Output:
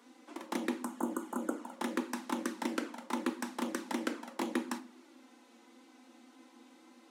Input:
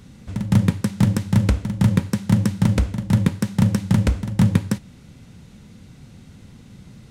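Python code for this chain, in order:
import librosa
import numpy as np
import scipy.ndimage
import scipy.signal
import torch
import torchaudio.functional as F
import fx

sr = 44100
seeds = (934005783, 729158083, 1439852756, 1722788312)

y = fx.spec_repair(x, sr, seeds[0], start_s=0.87, length_s=0.83, low_hz=1500.0, high_hz=6300.0, source='after')
y = fx.env_flanger(y, sr, rest_ms=4.3, full_db=-11.5)
y = scipy.signal.sosfilt(scipy.signal.cheby1(6, 9, 240.0, 'highpass', fs=sr, output='sos'), y)
y = fx.room_shoebox(y, sr, seeds[1], volume_m3=320.0, walls='furnished', distance_m=0.76)
y = y * librosa.db_to_amplitude(1.5)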